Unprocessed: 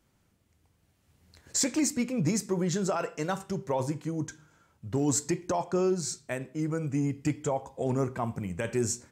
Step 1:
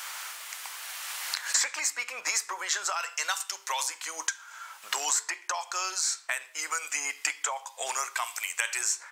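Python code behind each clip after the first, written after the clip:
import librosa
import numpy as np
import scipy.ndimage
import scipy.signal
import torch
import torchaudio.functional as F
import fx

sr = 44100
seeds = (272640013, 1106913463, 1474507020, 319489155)

y = scipy.signal.sosfilt(scipy.signal.butter(4, 1000.0, 'highpass', fs=sr, output='sos'), x)
y = fx.band_squash(y, sr, depth_pct=100)
y = F.gain(torch.from_numpy(y), 8.0).numpy()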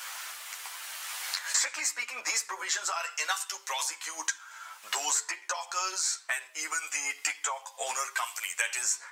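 y = fx.chorus_voices(x, sr, voices=4, hz=0.4, base_ms=11, depth_ms=2.1, mix_pct=45)
y = F.gain(torch.from_numpy(y), 2.0).numpy()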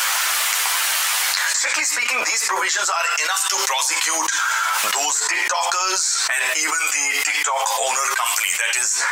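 y = fx.env_flatten(x, sr, amount_pct=100)
y = F.gain(torch.from_numpy(y), 4.0).numpy()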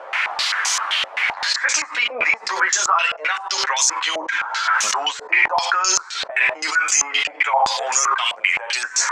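y = fx.filter_held_lowpass(x, sr, hz=7.7, low_hz=590.0, high_hz=6300.0)
y = F.gain(torch.from_numpy(y), -3.5).numpy()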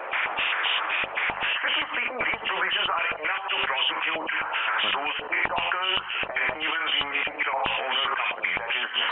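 y = fx.freq_compress(x, sr, knee_hz=2300.0, ratio=4.0)
y = fx.hum_notches(y, sr, base_hz=50, count=4)
y = fx.spectral_comp(y, sr, ratio=2.0)
y = F.gain(torch.from_numpy(y), -8.0).numpy()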